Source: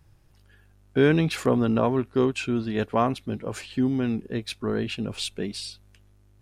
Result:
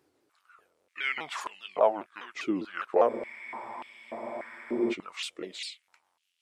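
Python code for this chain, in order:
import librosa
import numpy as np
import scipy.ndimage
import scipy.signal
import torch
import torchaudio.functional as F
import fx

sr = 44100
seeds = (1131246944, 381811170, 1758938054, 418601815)

y = fx.pitch_ramps(x, sr, semitones=-5.0, every_ms=201)
y = fx.spec_freeze(y, sr, seeds[0], at_s=3.1, hold_s=1.8)
y = fx.filter_held_highpass(y, sr, hz=3.4, low_hz=360.0, high_hz=2900.0)
y = F.gain(torch.from_numpy(y), -4.5).numpy()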